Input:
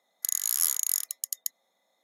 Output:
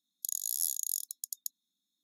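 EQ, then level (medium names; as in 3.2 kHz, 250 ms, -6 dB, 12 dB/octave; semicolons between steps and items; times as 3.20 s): brick-wall FIR band-stop 340–3300 Hz; -6.5 dB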